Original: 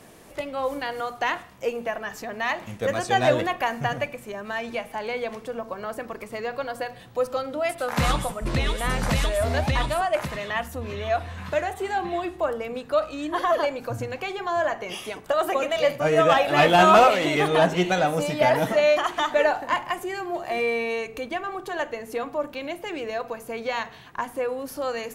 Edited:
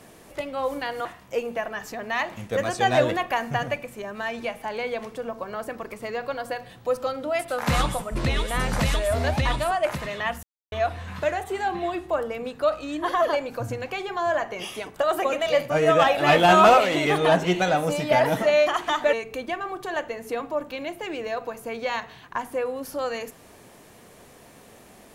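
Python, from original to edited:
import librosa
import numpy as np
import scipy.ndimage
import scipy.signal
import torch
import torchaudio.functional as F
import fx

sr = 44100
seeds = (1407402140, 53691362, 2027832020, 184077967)

y = fx.edit(x, sr, fx.cut(start_s=1.05, length_s=0.3),
    fx.silence(start_s=10.73, length_s=0.29),
    fx.cut(start_s=19.43, length_s=1.53), tone=tone)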